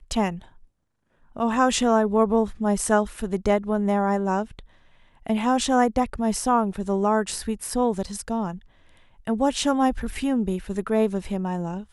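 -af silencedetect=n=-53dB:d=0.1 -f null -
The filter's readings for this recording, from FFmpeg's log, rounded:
silence_start: 0.66
silence_end: 1.21 | silence_duration: 0.55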